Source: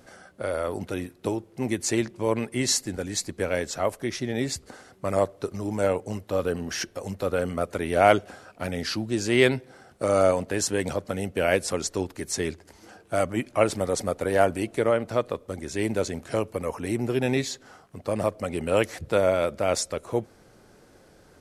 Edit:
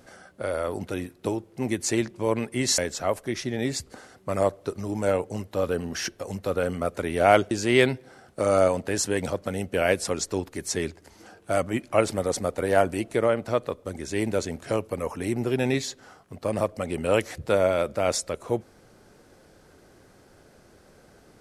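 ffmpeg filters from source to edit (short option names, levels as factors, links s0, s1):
-filter_complex "[0:a]asplit=3[s0][s1][s2];[s0]atrim=end=2.782[s3];[s1]atrim=start=3.538:end=8.272[s4];[s2]atrim=start=9.138[s5];[s3][s4]acrossfade=d=0.004:c1=hsin:c2=hsin[s6];[s6][s5]acrossfade=d=0.004:c1=hsin:c2=hsin"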